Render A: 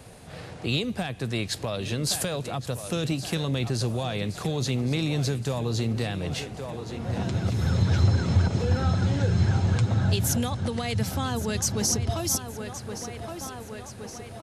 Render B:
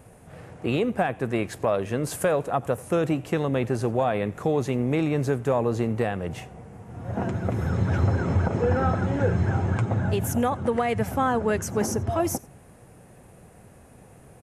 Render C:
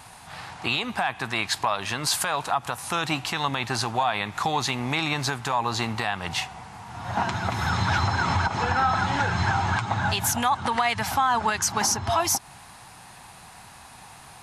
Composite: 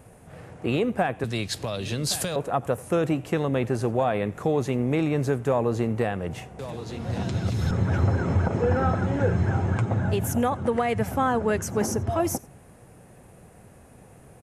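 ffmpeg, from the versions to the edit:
-filter_complex "[0:a]asplit=2[a][b];[1:a]asplit=3[c][d][e];[c]atrim=end=1.242[f];[a]atrim=start=1.238:end=2.362[g];[d]atrim=start=2.358:end=6.592[h];[b]atrim=start=6.588:end=7.712[i];[e]atrim=start=7.708[j];[f][g]acrossfade=d=0.004:c1=hsin:c2=hsin[k];[k][h]acrossfade=d=0.004:c1=hsin:c2=hsin[l];[l][i]acrossfade=d=0.004:c1=hsin:c2=hsin[m];[m][j]acrossfade=d=0.004:c1=hsin:c2=hsin"

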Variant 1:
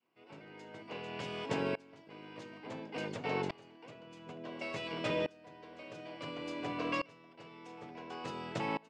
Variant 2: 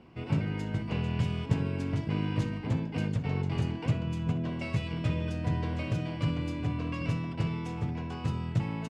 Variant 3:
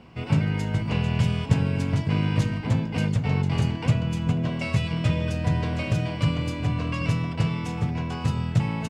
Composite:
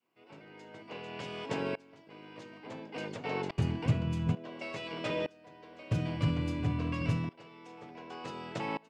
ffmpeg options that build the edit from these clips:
-filter_complex "[1:a]asplit=2[a][b];[0:a]asplit=3[c][d][e];[c]atrim=end=3.582[f];[a]atrim=start=3.578:end=4.352[g];[d]atrim=start=4.348:end=5.912[h];[b]atrim=start=5.908:end=7.292[i];[e]atrim=start=7.288[j];[f][g]acrossfade=d=0.004:c1=hsin:c2=hsin[k];[k][h]acrossfade=d=0.004:c1=hsin:c2=hsin[l];[l][i]acrossfade=d=0.004:c1=hsin:c2=hsin[m];[m][j]acrossfade=d=0.004:c1=hsin:c2=hsin"

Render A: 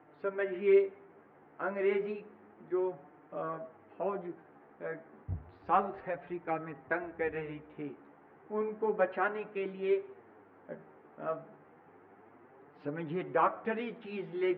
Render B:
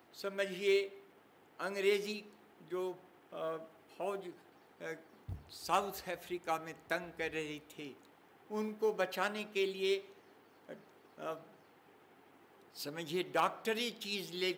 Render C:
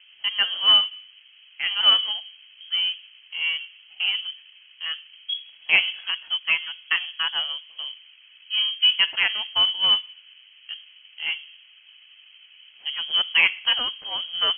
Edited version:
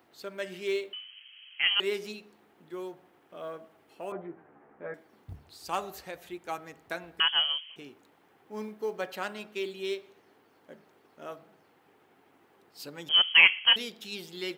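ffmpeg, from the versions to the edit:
-filter_complex "[2:a]asplit=3[a][b][c];[1:a]asplit=5[d][e][f][g][h];[d]atrim=end=0.932[i];[a]atrim=start=0.928:end=1.802[j];[e]atrim=start=1.798:end=4.122[k];[0:a]atrim=start=4.118:end=4.942[l];[f]atrim=start=4.938:end=7.202[m];[b]atrim=start=7.198:end=7.762[n];[g]atrim=start=7.758:end=13.092[o];[c]atrim=start=13.088:end=13.762[p];[h]atrim=start=13.758[q];[i][j]acrossfade=d=0.004:c1=hsin:c2=hsin[r];[r][k]acrossfade=d=0.004:c1=hsin:c2=hsin[s];[s][l]acrossfade=d=0.004:c1=hsin:c2=hsin[t];[t][m]acrossfade=d=0.004:c1=hsin:c2=hsin[u];[u][n]acrossfade=d=0.004:c1=hsin:c2=hsin[v];[v][o]acrossfade=d=0.004:c1=hsin:c2=hsin[w];[w][p]acrossfade=d=0.004:c1=hsin:c2=hsin[x];[x][q]acrossfade=d=0.004:c1=hsin:c2=hsin"

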